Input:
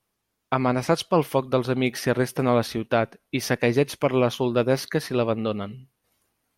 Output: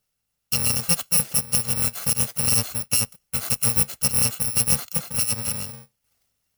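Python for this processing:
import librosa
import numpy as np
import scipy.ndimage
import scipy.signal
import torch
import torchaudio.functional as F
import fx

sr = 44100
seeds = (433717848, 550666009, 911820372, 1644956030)

y = fx.bit_reversed(x, sr, seeds[0], block=128)
y = fx.band_widen(y, sr, depth_pct=70, at=(4.43, 5.48))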